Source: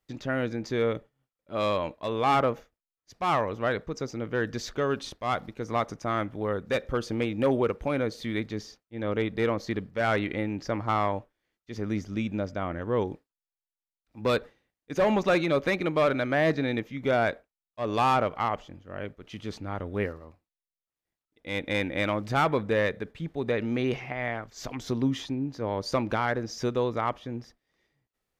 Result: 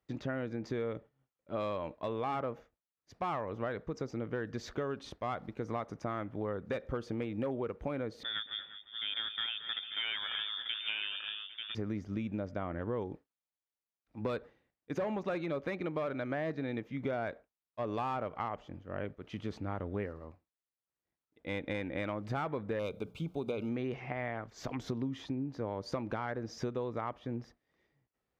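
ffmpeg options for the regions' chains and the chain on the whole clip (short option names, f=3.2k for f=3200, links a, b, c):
-filter_complex "[0:a]asettb=1/sr,asplit=3[a][b][c];[a]atrim=end=8.234[d];[b]atrim=start=8.23:end=11.75,asetpts=PTS-STARTPTS,afade=t=in:d=0.004:c=qsin,afade=t=out:st=3.516:d=0.004:c=qsin,aecho=1:1:225|349|802|890:0.211|0.133|0.106|0.376,atrim=end_sample=155232,lowpass=f=3.1k:t=q:w=0.5098,lowpass=f=3.1k:t=q:w=0.6013,lowpass=f=3.1k:t=q:w=0.9,lowpass=f=3.1k:t=q:w=2.563,afreqshift=-3700[e];[c]atrim=start=11.746[f];[d][e]acrossfade=d=0.004:c1=hsin:c2=qsin[g];[g][f]acrossfade=d=0.004:c1=qsin:c2=hsin,asettb=1/sr,asplit=3[h][i][j];[h]atrim=end=22.794[k];[i]atrim=start=22.79:end=23.69,asetpts=PTS-STARTPTS,afade=t=in:d=0.004:c=qsin,afade=t=out:st=0.896:d=0.004:c=qsin,asuperstop=centerf=1800:order=8:qfactor=2.6,aemphasis=mode=production:type=75kf,bandreject=f=60:t=h:w=6,bandreject=f=120:t=h:w=6,bandreject=f=180:t=h:w=6[l];[j]atrim=start=23.686[m];[k][l]acrossfade=d=0.004:c1=hsin:c2=qsin[n];[n][m]acrossfade=d=0.004:c1=qsin:c2=hsin,highpass=47,highshelf=f=3.3k:g=-12,acompressor=threshold=-33dB:ratio=6"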